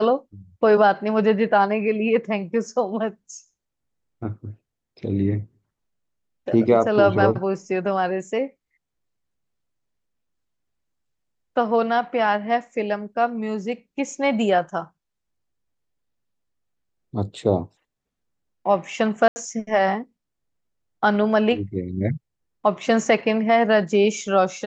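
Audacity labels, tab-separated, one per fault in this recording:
19.280000	19.360000	gap 80 ms

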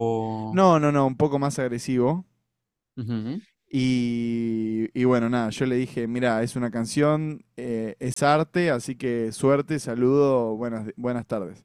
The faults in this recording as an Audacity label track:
8.140000	8.160000	gap 24 ms

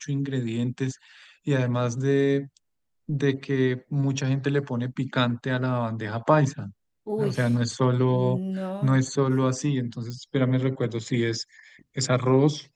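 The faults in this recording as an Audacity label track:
10.100000	10.100000	pop -23 dBFS

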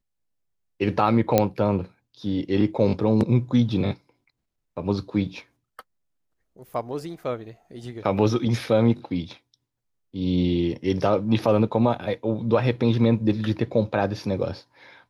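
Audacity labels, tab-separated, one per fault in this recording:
1.380000	1.380000	pop -4 dBFS

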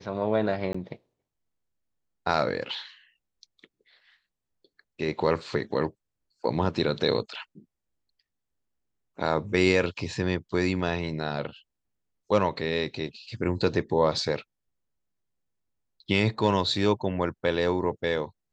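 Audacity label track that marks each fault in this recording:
0.730000	0.740000	gap 15 ms

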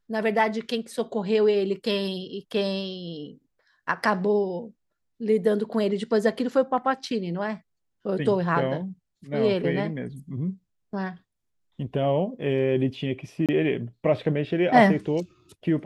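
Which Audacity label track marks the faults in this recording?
13.460000	13.490000	gap 27 ms

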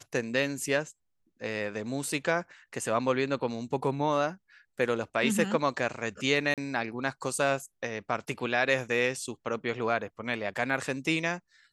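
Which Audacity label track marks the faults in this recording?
6.540000	6.580000	gap 37 ms

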